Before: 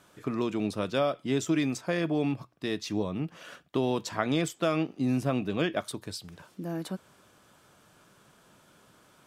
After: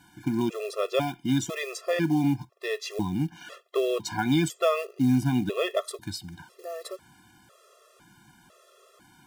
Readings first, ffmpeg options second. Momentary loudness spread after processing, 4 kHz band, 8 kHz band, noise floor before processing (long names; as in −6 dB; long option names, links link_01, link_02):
15 LU, +2.5 dB, +3.0 dB, −61 dBFS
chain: -af "acrusher=bits=6:mode=log:mix=0:aa=0.000001,afftfilt=real='re*gt(sin(2*PI*1*pts/sr)*(1-2*mod(floor(b*sr/1024/350),2)),0)':imag='im*gt(sin(2*PI*1*pts/sr)*(1-2*mod(floor(b*sr/1024/350),2)),0)':win_size=1024:overlap=0.75,volume=5.5dB"